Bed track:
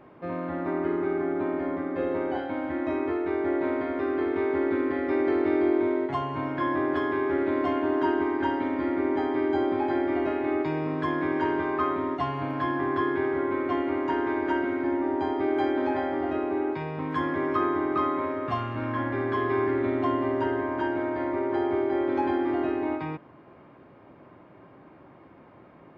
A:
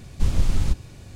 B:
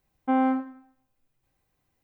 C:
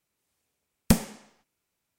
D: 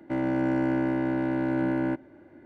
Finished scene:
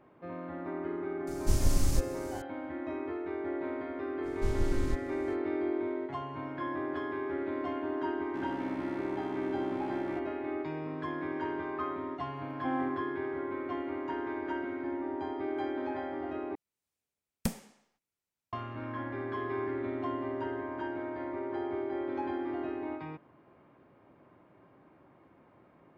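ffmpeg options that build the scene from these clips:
-filter_complex "[1:a]asplit=2[s0][s1];[0:a]volume=0.355[s2];[s0]aexciter=amount=3.7:drive=4:freq=4900[s3];[4:a]asoftclip=type=hard:threshold=0.0266[s4];[s2]asplit=2[s5][s6];[s5]atrim=end=16.554[s7];[3:a]atrim=end=1.98,asetpts=PTS-STARTPTS,volume=0.251[s8];[s6]atrim=start=18.526[s9];[s3]atrim=end=1.15,asetpts=PTS-STARTPTS,volume=0.473,afade=t=in:d=0.004:c=hsin,afade=t=out:st=1.146:d=0.004:c=hsin,adelay=1270[s10];[s1]atrim=end=1.15,asetpts=PTS-STARTPTS,volume=0.282,afade=t=in:d=0.05,afade=t=out:st=1.1:d=0.05,adelay=4220[s11];[s4]atrim=end=2.45,asetpts=PTS-STARTPTS,volume=0.355,afade=t=in:d=0.004:c=hsin,afade=t=out:st=2.446:d=0.004:c=hsin,adelay=8240[s12];[2:a]atrim=end=2.03,asetpts=PTS-STARTPTS,volume=0.299,afade=t=in:d=0.004:c=hsin,afade=t=out:st=2.026:d=0.004:c=hsin,adelay=545076S[s13];[s7][s8]acrossfade=d=0.004:c1=hsin:c2=hsin[s14];[s14][s9]acrossfade=d=0.004:c1=hsin:c2=hsin[s15];[s15][s10][s11][s12][s13]amix=inputs=5:normalize=0"

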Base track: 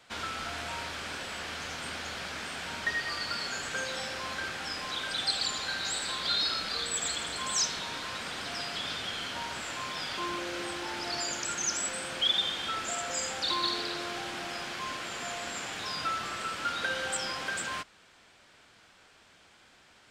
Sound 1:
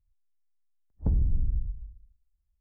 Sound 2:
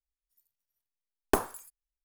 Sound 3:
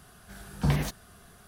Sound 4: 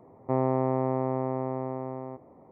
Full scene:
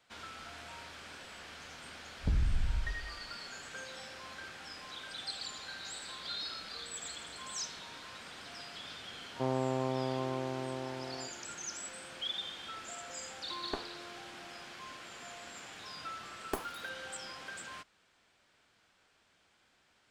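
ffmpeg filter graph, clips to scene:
-filter_complex "[2:a]asplit=2[s0][s1];[0:a]volume=0.282[s2];[s0]lowpass=3500[s3];[1:a]atrim=end=2.6,asetpts=PTS-STARTPTS,volume=0.562,afade=t=in:d=0.004:c=hsin,afade=t=out:st=2.596:d=0.004:c=hsin,adelay=1210[s4];[4:a]atrim=end=2.51,asetpts=PTS-STARTPTS,volume=0.447,afade=t=in:d=0.004:c=hsin,afade=t=out:st=2.506:d=0.004:c=hsin,adelay=9110[s5];[s3]atrim=end=2.04,asetpts=PTS-STARTPTS,volume=0.211,afade=t=in:d=0.004:c=hsin,afade=t=out:st=2.036:d=0.004:c=hsin,adelay=12400[s6];[s1]atrim=end=2.04,asetpts=PTS-STARTPTS,volume=0.266,afade=t=in:d=0.004:c=hsin,afade=t=out:st=2.036:d=0.004:c=hsin,adelay=15200[s7];[s2][s4][s5][s6][s7]amix=inputs=5:normalize=0"

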